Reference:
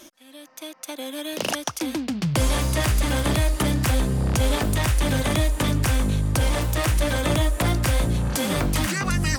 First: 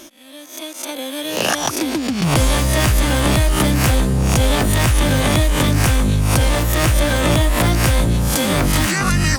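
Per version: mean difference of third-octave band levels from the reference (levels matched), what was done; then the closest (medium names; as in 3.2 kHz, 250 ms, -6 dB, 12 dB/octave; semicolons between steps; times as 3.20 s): 2.5 dB: reverse spectral sustain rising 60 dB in 0.48 s; in parallel at -7 dB: hard clipper -16.5 dBFS, distortion -16 dB; on the sum: trim +2 dB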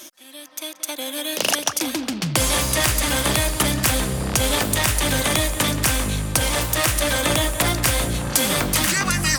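4.5 dB: tilt EQ +2 dB/octave; filtered feedback delay 179 ms, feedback 62%, low-pass 3.1 kHz, level -12.5 dB; trim +3.5 dB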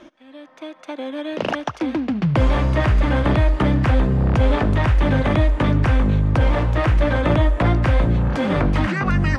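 7.5 dB: low-pass 2 kHz 12 dB/octave; on a send: thinning echo 73 ms, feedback 76%, high-pass 420 Hz, level -22.5 dB; on the sum: trim +5 dB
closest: first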